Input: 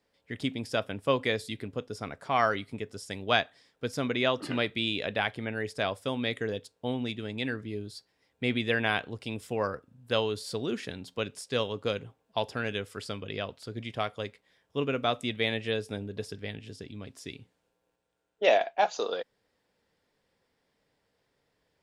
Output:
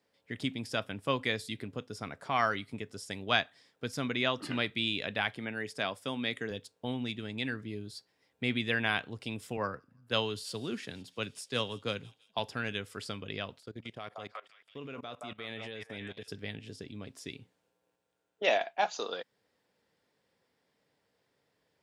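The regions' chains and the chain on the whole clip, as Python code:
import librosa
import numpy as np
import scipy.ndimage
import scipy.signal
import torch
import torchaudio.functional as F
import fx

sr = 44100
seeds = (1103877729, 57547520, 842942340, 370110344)

y = fx.chain(x, sr, fx.highpass(hz=140.0, slope=12),
    fx.notch(hz=4000.0, q=24.0), at=(5.35, 6.51))
y = fx.chain(y, sr, fx.echo_wet_highpass(ms=167, feedback_pct=67, hz=3400.0, wet_db=-17.5),
    fx.band_widen(depth_pct=40), at=(9.57, 12.39))
y = fx.chain(y, sr, fx.low_shelf(hz=210.0, db=-2.0),
    fx.echo_stepped(ms=173, hz=880.0, octaves=0.7, feedback_pct=70, wet_db=-3),
    fx.level_steps(step_db=20), at=(13.6, 16.28))
y = scipy.signal.sosfilt(scipy.signal.butter(2, 93.0, 'highpass', fs=sr, output='sos'), y)
y = fx.dynamic_eq(y, sr, hz=500.0, q=1.0, threshold_db=-42.0, ratio=4.0, max_db=-6)
y = F.gain(torch.from_numpy(y), -1.0).numpy()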